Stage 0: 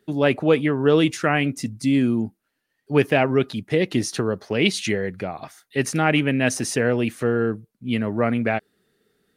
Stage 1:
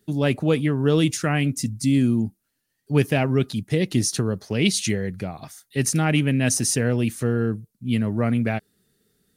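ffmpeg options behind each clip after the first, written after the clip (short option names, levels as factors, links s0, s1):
-af "bass=f=250:g=11,treble=f=4000:g=13,volume=0.531"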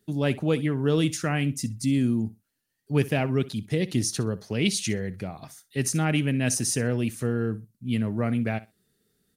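-af "aecho=1:1:63|126:0.119|0.0202,volume=0.631"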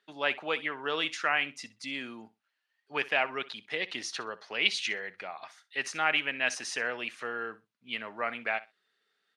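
-af "asuperpass=centerf=1700:order=4:qfactor=0.66,volume=1.78"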